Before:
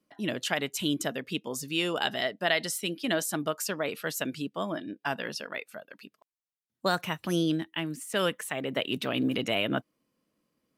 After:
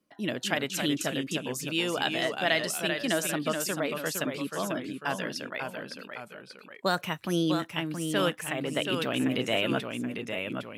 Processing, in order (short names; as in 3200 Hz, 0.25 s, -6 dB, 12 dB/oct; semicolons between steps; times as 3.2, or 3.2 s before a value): echoes that change speed 0.242 s, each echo -1 st, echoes 2, each echo -6 dB